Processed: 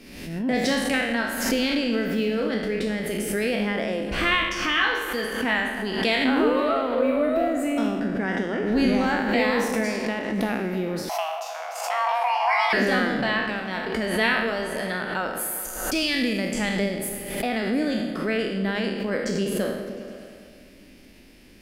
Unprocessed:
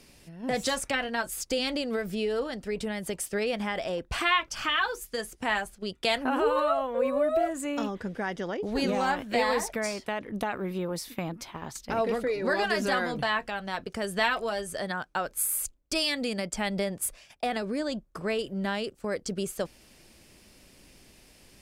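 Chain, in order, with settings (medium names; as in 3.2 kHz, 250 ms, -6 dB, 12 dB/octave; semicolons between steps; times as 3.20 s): spectral sustain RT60 0.94 s; ten-band graphic EQ 125 Hz -6 dB, 250 Hz +9 dB, 1 kHz -4 dB, 2 kHz +4 dB, 8 kHz -8 dB; delay with an opening low-pass 102 ms, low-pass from 200 Hz, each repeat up 1 oct, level -6 dB; 11.09–12.73 s: frequency shift +470 Hz; swell ahead of each attack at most 53 dB/s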